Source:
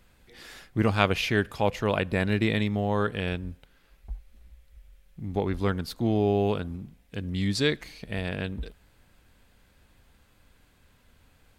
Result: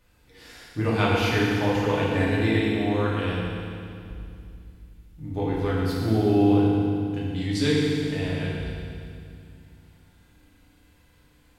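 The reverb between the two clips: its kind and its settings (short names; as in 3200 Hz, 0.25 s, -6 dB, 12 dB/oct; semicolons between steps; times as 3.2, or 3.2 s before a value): FDN reverb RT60 2.4 s, low-frequency decay 1.45×, high-frequency decay 0.95×, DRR -7 dB; gain -6 dB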